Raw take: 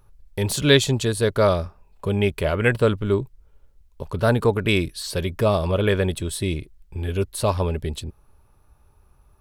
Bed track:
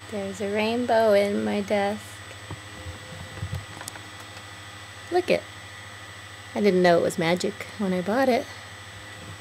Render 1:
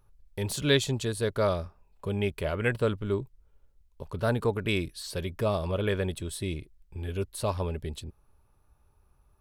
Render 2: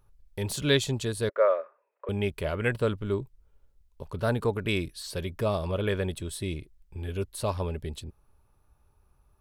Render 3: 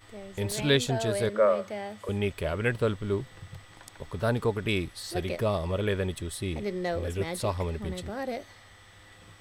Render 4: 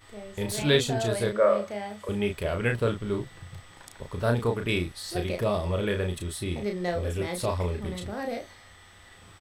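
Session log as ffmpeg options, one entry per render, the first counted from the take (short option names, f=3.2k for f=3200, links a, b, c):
-af "volume=-8dB"
-filter_complex "[0:a]asettb=1/sr,asplit=3[a][b][c];[a]atrim=end=1.294[d];[b]atrim=start=1.29:end=2.09,asetpts=PTS-STARTPTS,afade=t=in:d=0.004:c=qsin,afade=t=out:st=0.796:d=0.004:c=qsin,highpass=f=460:w=0.5412,highpass=f=460:w=1.3066,equalizer=f=540:t=q:w=4:g=10,equalizer=f=800:t=q:w=4:g=-8,equalizer=f=1.2k:t=q:w=4:g=4,equalizer=f=1.9k:t=q:w=4:g=5,lowpass=f=2.2k:w=0.5412,lowpass=f=2.2k:w=1.3066[e];[c]atrim=start=2.086[f];[d][e]acrossfade=d=0.004:c1=hsin:c2=qsin[g];[g][f]acrossfade=d=0.004:c1=qsin:c2=hsin"
-filter_complex "[1:a]volume=-12.5dB[a];[0:a][a]amix=inputs=2:normalize=0"
-filter_complex "[0:a]asplit=2[a][b];[b]adelay=34,volume=-5dB[c];[a][c]amix=inputs=2:normalize=0"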